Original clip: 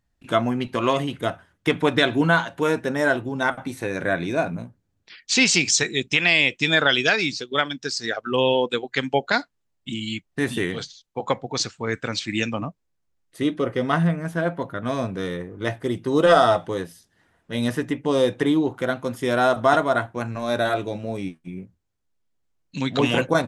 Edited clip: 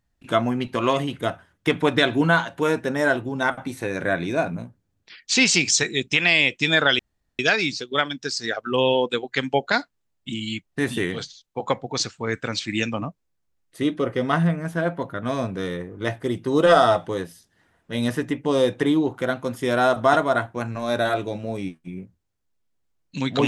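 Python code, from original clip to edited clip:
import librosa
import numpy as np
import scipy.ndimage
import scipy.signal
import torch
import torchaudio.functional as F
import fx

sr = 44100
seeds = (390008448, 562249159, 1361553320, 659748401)

y = fx.edit(x, sr, fx.insert_room_tone(at_s=6.99, length_s=0.4), tone=tone)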